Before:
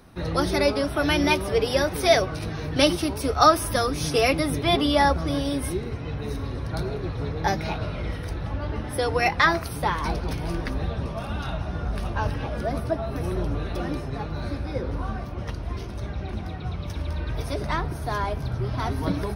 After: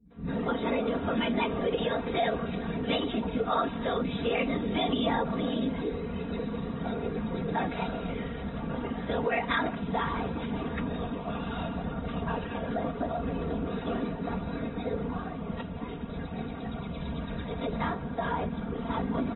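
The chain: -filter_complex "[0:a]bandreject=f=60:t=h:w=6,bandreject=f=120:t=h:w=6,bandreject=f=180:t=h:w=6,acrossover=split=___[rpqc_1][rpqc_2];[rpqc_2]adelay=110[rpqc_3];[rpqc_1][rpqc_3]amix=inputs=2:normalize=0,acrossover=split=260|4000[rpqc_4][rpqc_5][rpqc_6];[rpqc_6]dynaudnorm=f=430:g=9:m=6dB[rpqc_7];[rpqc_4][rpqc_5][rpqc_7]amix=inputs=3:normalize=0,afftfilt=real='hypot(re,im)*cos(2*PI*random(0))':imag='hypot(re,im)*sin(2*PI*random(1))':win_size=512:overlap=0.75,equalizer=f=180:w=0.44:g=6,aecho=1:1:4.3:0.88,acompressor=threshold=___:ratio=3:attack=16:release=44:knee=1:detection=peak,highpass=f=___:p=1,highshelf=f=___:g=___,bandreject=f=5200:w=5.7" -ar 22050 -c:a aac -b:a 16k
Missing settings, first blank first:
200, -29dB, 87, 2000, -2.5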